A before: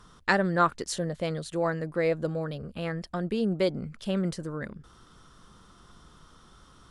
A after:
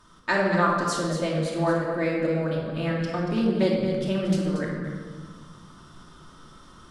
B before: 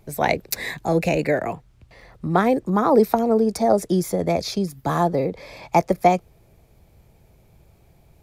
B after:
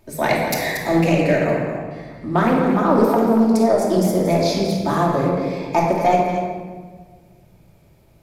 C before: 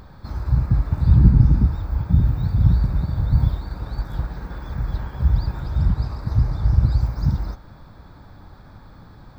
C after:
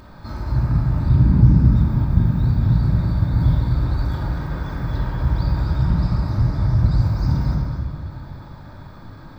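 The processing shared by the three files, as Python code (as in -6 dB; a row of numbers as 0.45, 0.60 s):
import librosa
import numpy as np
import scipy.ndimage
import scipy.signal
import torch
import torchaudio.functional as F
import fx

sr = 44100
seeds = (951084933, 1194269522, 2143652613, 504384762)

p1 = fx.low_shelf(x, sr, hz=85.0, db=-9.5)
p2 = fx.rider(p1, sr, range_db=3, speed_s=0.5)
p3 = p1 + (p2 * librosa.db_to_amplitude(0.5))
p4 = 10.0 ** (-0.5 / 20.0) * np.tanh(p3 / 10.0 ** (-0.5 / 20.0))
p5 = p4 + fx.echo_single(p4, sr, ms=232, db=-9.0, dry=0)
p6 = fx.room_shoebox(p5, sr, seeds[0], volume_m3=1500.0, walls='mixed', distance_m=2.7)
p7 = fx.doppler_dist(p6, sr, depth_ms=0.15)
y = p7 * librosa.db_to_amplitude(-7.5)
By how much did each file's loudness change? +4.0, +3.0, +1.5 LU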